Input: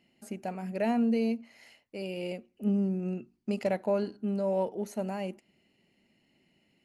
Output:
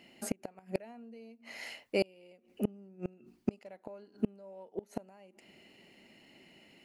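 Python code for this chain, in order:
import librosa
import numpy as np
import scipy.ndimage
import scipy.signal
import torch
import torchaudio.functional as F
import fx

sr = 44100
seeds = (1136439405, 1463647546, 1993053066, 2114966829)

y = fx.bass_treble(x, sr, bass_db=-8, treble_db=-2)
y = fx.gate_flip(y, sr, shuts_db=-29.0, range_db=-32)
y = y * 10.0 ** (12.0 / 20.0)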